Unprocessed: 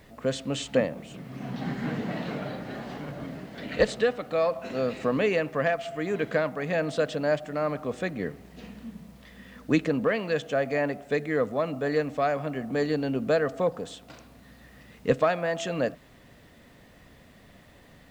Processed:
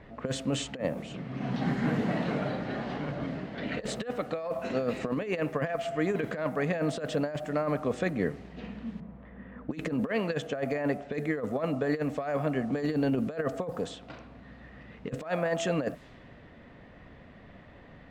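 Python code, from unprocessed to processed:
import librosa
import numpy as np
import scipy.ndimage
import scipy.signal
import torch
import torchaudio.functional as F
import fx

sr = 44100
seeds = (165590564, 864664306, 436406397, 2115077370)

y = fx.env_lowpass(x, sr, base_hz=1100.0, full_db=-24.5, at=(9.0, 11.9))
y = fx.env_lowpass(y, sr, base_hz=2100.0, full_db=-25.0)
y = fx.dynamic_eq(y, sr, hz=4100.0, q=0.84, threshold_db=-47.0, ratio=4.0, max_db=-5)
y = fx.over_compress(y, sr, threshold_db=-28.0, ratio=-0.5)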